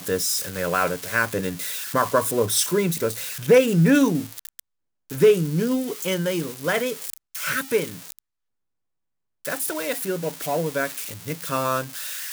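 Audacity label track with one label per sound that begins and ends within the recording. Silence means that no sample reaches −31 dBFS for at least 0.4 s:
5.100000	8.190000	sound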